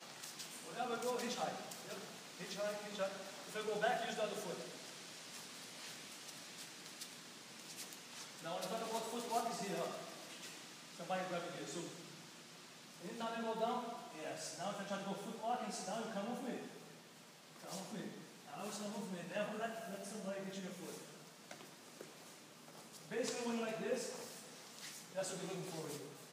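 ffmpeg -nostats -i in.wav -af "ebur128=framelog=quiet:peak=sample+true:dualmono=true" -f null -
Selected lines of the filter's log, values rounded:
Integrated loudness:
  I:         -41.5 LUFS
  Threshold: -51.9 LUFS
Loudness range:
  LRA:         5.9 LU
  Threshold: -61.9 LUFS
  LRA low:   -45.5 LUFS
  LRA high:  -39.6 LUFS
Sample peak:
  Peak:      -24.3 dBFS
True peak:
  Peak:      -24.1 dBFS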